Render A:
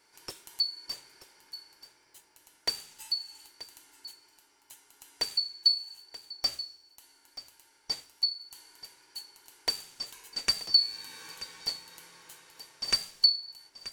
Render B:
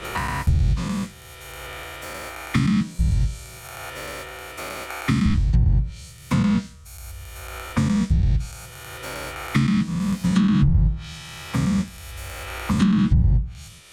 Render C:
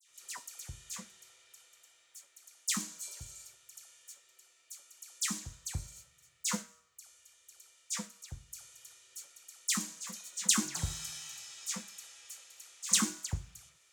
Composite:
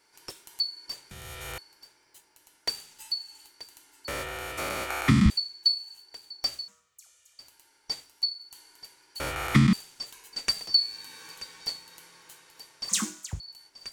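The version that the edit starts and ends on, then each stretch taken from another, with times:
A
0:01.11–0:01.58: punch in from B
0:04.08–0:05.30: punch in from B
0:06.68–0:07.39: punch in from C
0:09.20–0:09.73: punch in from B
0:12.89–0:13.40: punch in from C

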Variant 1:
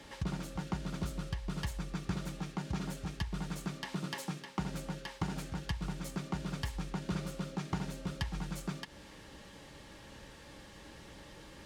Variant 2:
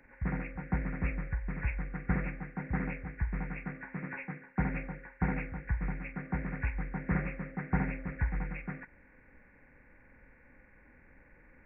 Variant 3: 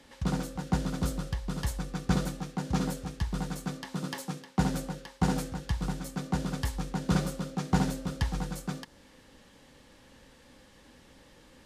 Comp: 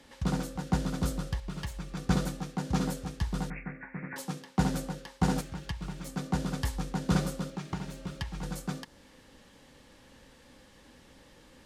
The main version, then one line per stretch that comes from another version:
3
0:01.40–0:01.97: punch in from 1
0:03.50–0:04.16: punch in from 2
0:05.41–0:06.07: punch in from 1
0:07.50–0:08.43: punch in from 1

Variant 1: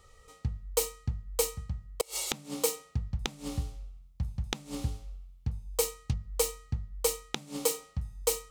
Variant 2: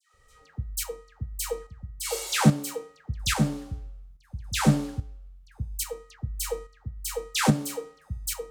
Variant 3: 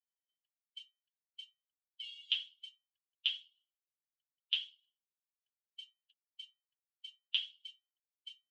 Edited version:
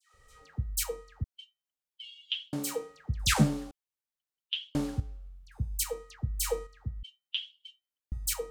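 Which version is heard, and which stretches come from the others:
2
0:01.24–0:02.53: punch in from 3
0:03.71–0:04.75: punch in from 3
0:07.03–0:08.12: punch in from 3
not used: 1

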